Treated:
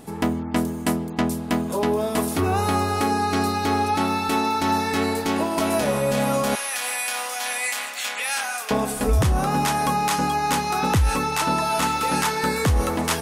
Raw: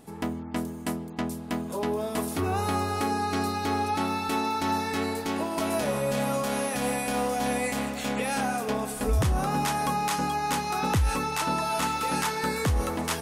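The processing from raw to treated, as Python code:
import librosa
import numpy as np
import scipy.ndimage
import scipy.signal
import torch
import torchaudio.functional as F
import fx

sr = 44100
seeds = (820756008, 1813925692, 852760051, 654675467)

p1 = fx.highpass(x, sr, hz=1400.0, slope=12, at=(6.55, 8.71))
p2 = fx.rider(p1, sr, range_db=4, speed_s=0.5)
y = p1 + F.gain(torch.from_numpy(p2), 0.0).numpy()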